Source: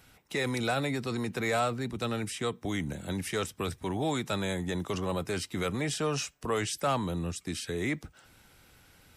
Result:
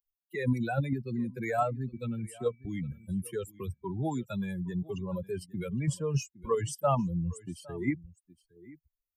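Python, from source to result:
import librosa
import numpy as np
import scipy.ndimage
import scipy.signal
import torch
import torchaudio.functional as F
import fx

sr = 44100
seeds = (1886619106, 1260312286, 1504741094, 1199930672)

p1 = fx.bin_expand(x, sr, power=3.0)
p2 = fx.dmg_tone(p1, sr, hz=2300.0, level_db=-68.0, at=(1.92, 3.06), fade=0.02)
p3 = fx.graphic_eq(p2, sr, hz=(125, 250, 500, 4000), db=(9, 7, 4, -11))
p4 = p3 + fx.echo_single(p3, sr, ms=812, db=-22.0, dry=0)
p5 = fx.dynamic_eq(p4, sr, hz=300.0, q=1.1, threshold_db=-48.0, ratio=4.0, max_db=-5)
p6 = fx.level_steps(p5, sr, step_db=15)
y = p5 + (p6 * librosa.db_to_amplitude(-1.5))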